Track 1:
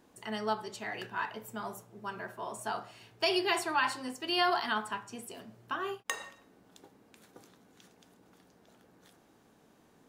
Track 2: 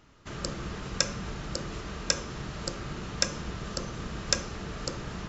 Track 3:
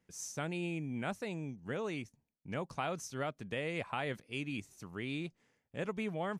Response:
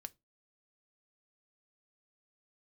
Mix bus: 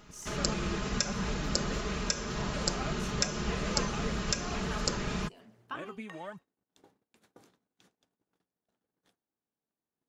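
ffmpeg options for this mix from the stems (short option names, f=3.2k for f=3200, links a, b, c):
-filter_complex "[0:a]agate=range=-28dB:threshold=-58dB:ratio=16:detection=peak,acrossover=split=3200[a][b];[b]acompressor=threshold=-47dB:ratio=4:attack=1:release=60[c];[a][c]amix=inputs=2:normalize=0,highshelf=f=11k:g=-8,volume=-3dB[d];[1:a]highshelf=f=5.4k:g=4,aecho=1:1:4.8:0.46,volume=2.5dB[e];[2:a]aphaser=in_gain=1:out_gain=1:delay=4.1:decay=0.68:speed=0.92:type=sinusoidal,acompressor=threshold=-44dB:ratio=1.5,volume=-3dB,asplit=2[f][g];[g]apad=whole_len=444902[h];[d][h]sidechaincompress=threshold=-52dB:ratio=3:attack=34:release=669[i];[i][e][f]amix=inputs=3:normalize=0,alimiter=limit=-9dB:level=0:latency=1:release=215"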